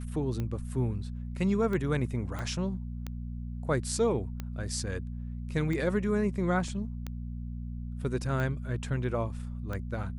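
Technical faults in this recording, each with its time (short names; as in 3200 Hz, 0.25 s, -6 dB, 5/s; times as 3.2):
hum 60 Hz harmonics 4 -37 dBFS
tick 45 rpm -22 dBFS
2.39 pop -23 dBFS
6.68 gap 2.8 ms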